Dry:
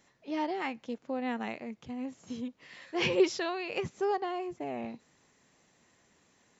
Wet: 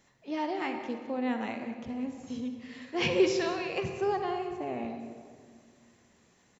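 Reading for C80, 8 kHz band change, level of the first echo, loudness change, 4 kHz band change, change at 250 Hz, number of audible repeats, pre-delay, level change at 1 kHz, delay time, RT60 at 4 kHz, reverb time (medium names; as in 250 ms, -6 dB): 7.0 dB, no reading, -16.0 dB, +1.5 dB, +1.0 dB, +2.5 dB, 1, 39 ms, +1.0 dB, 185 ms, 1.2 s, 2.0 s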